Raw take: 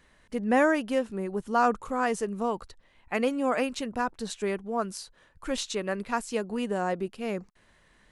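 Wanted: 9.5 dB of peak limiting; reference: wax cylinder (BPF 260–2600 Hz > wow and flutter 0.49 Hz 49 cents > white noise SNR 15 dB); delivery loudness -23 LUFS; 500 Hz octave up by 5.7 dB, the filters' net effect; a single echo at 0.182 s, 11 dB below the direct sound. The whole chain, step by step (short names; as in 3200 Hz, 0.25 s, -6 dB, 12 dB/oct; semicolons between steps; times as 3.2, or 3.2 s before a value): bell 500 Hz +7 dB; limiter -17.5 dBFS; BPF 260–2600 Hz; echo 0.182 s -11 dB; wow and flutter 0.49 Hz 49 cents; white noise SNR 15 dB; gain +6.5 dB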